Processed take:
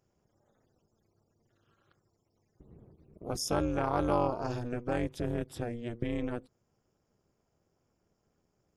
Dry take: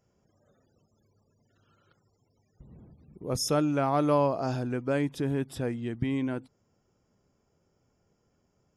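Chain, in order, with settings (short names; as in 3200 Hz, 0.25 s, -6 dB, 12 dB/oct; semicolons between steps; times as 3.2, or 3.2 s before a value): AM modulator 240 Hz, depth 100%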